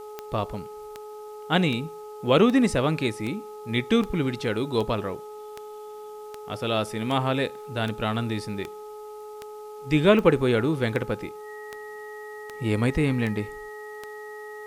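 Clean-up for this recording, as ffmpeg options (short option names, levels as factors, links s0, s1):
-af "adeclick=t=4,bandreject=f=423.1:t=h:w=4,bandreject=f=846.2:t=h:w=4,bandreject=f=1269.3:t=h:w=4,bandreject=f=1900:w=30,agate=range=0.0891:threshold=0.0251"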